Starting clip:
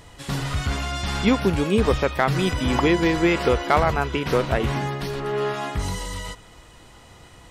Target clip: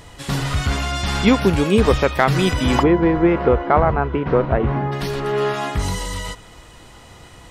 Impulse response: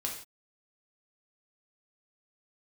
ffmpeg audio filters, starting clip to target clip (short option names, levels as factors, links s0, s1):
-filter_complex "[0:a]asplit=3[s0][s1][s2];[s0]afade=t=out:st=2.82:d=0.02[s3];[s1]lowpass=1300,afade=t=in:st=2.82:d=0.02,afade=t=out:st=4.91:d=0.02[s4];[s2]afade=t=in:st=4.91:d=0.02[s5];[s3][s4][s5]amix=inputs=3:normalize=0,volume=1.68"